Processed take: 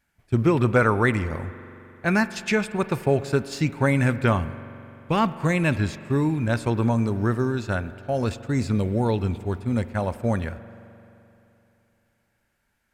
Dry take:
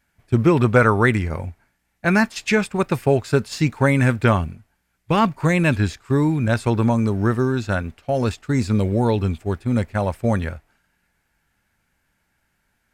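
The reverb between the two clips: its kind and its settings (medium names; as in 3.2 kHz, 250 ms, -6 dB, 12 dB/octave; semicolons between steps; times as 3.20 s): spring tank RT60 3 s, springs 43 ms, chirp 80 ms, DRR 14 dB; trim -4 dB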